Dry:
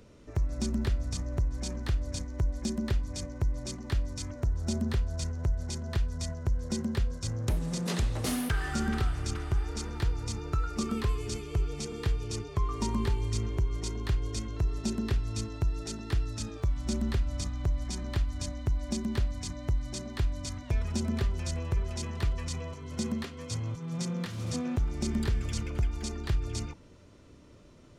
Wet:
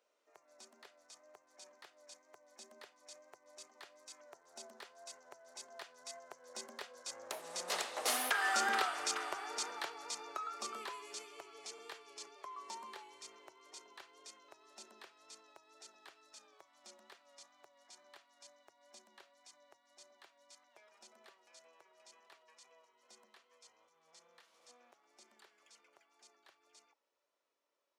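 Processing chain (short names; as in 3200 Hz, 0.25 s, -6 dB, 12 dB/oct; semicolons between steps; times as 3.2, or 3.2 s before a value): Doppler pass-by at 8.83, 8 m/s, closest 5.6 m; wow and flutter 29 cents; ladder high-pass 510 Hz, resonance 25%; gain +10.5 dB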